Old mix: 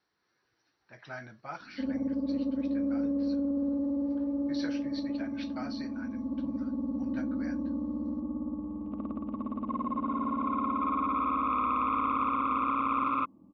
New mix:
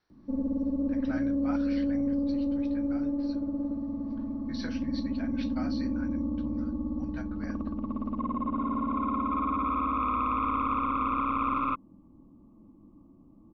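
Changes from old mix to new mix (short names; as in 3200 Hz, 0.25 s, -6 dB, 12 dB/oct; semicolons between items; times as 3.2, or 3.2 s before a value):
background: entry -1.50 s; master: remove HPF 200 Hz 6 dB/oct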